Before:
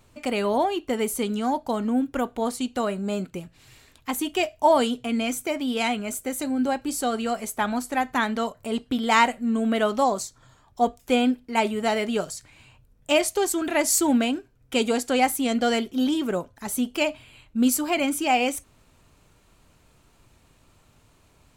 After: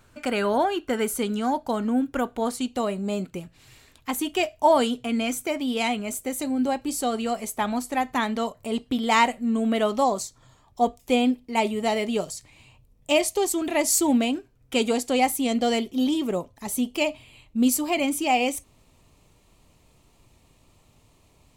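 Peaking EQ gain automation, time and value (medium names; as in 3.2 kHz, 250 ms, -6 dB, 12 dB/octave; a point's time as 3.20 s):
peaking EQ 1.5 kHz 0.31 oct
+11 dB
from 1.17 s +2.5 dB
from 2.68 s -9 dB
from 3.26 s -1 dB
from 5.57 s -7.5 dB
from 10.98 s -13.5 dB
from 14.35 s -3.5 dB
from 14.93 s -13.5 dB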